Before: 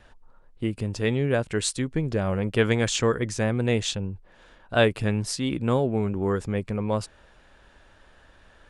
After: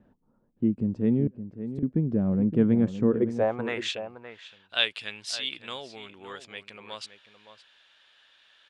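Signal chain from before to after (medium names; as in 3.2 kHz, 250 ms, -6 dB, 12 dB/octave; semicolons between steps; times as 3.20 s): band-pass sweep 220 Hz -> 3.4 kHz, 3.03–4.07 s; 1.27–1.83 s: inverted gate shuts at -32 dBFS, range -36 dB; echo from a far wall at 97 m, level -11 dB; trim +7 dB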